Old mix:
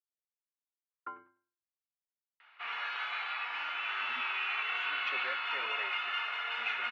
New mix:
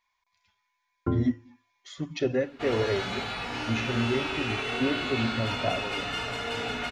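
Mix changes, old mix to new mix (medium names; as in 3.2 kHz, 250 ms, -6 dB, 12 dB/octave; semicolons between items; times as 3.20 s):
speech: entry -2.90 s; master: remove Chebyshev band-pass 1.1–2.7 kHz, order 2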